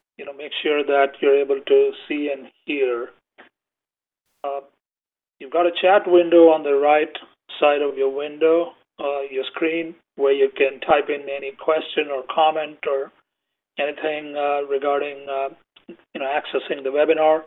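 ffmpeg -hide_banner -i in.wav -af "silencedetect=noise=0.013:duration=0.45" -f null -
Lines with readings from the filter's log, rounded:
silence_start: 3.42
silence_end: 4.44 | silence_duration: 1.02
silence_start: 4.61
silence_end: 5.41 | silence_duration: 0.80
silence_start: 13.08
silence_end: 13.78 | silence_duration: 0.69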